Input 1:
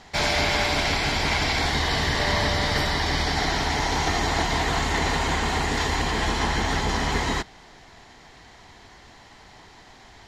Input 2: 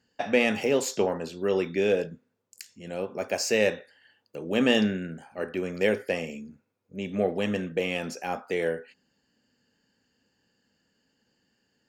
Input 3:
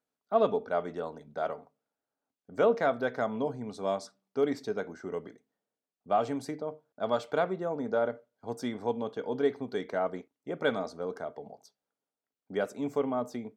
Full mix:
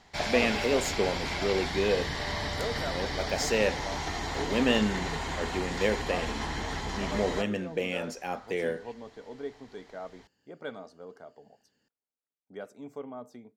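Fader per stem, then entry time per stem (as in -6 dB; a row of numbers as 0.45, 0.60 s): -10.0, -3.0, -10.5 dB; 0.00, 0.00, 0.00 s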